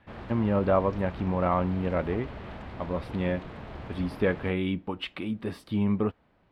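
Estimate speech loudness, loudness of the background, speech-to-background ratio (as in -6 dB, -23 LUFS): -29.0 LUFS, -42.0 LUFS, 13.0 dB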